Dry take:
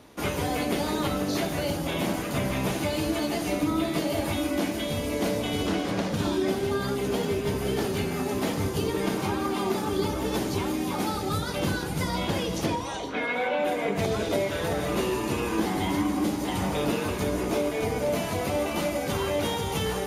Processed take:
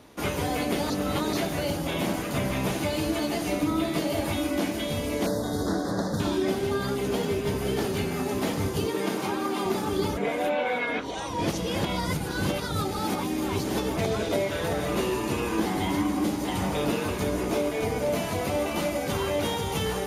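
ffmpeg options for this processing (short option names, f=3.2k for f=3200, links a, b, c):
-filter_complex "[0:a]asettb=1/sr,asplit=3[a][b][c];[a]atrim=end=5.264[d];[b]atrim=start=5.26:end=6.2,asetpts=PTS-STARTPTS,afade=t=in:d=0.004:c=qsin,afade=t=out:st=0.936:d=0.004:c=qsin,asuperstop=centerf=2600:order=8:qfactor=1.4[e];[c]atrim=start=6.196[f];[d][e]acrossfade=d=0.004:c1=hsin:c2=qsin[g];[g][f]acrossfade=d=0.004:c1=qsin:c2=hsin,asettb=1/sr,asplit=3[h][i][j];[h]atrim=end=8.864[k];[i]atrim=start=8.86:end=9.66,asetpts=PTS-STARTPTS,afade=t=in:d=0.004:c=qsin,afade=t=out:st=0.796:d=0.004:c=qsin,highpass=190[l];[j]atrim=start=9.656[m];[k][l]acrossfade=d=0.004:c1=hsin:c2=qsin[n];[n][m]acrossfade=d=0.004:c1=qsin:c2=hsin,asplit=5[o][p][q][r][s];[o]atrim=end=0.902[t];[p]atrim=start=0.898:end=1.332,asetpts=PTS-STARTPTS,areverse[u];[q]atrim=start=1.328:end=10.172[v];[r]atrim=start=10.168:end=13.972,asetpts=PTS-STARTPTS,areverse[w];[s]atrim=start=13.968[x];[t][u]acrossfade=d=0.004:c1=hsin:c2=hsin[y];[y][v]acrossfade=d=0.004:c1=hsin:c2=hsin[z];[z][w]acrossfade=d=0.004:c1=hsin:c2=hsin[aa];[aa][x]acrossfade=d=0.004:c1=hsin:c2=hsin"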